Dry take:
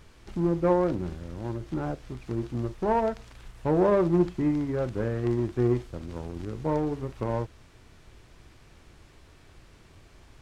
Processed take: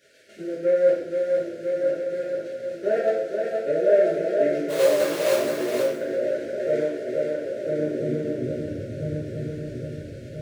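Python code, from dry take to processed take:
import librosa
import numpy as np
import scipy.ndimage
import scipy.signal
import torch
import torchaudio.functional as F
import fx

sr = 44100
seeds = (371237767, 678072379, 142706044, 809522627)

y = scipy.signal.sosfilt(scipy.signal.cheby1(5, 1.0, [660.0, 1400.0], 'bandstop', fs=sr, output='sos'), x)
y = fx.high_shelf(y, sr, hz=2000.0, db=-3.5)
y = fx.level_steps(y, sr, step_db=14)
y = fx.echo_swing(y, sr, ms=1333, ratio=3, feedback_pct=47, wet_db=-5.5)
y = fx.quant_companded(y, sr, bits=4, at=(4.68, 5.35), fade=0.02)
y = fx.filter_sweep_highpass(y, sr, from_hz=580.0, to_hz=83.0, start_s=7.3, end_s=8.85, q=1.1)
y = y + 10.0 ** (-4.5 / 20.0) * np.pad(y, (int(474 * sr / 1000.0), 0))[:len(y)]
y = fx.rev_double_slope(y, sr, seeds[0], early_s=0.6, late_s=1.7, knee_db=-18, drr_db=-8.0)
y = y * 10.0 ** (1.5 / 20.0)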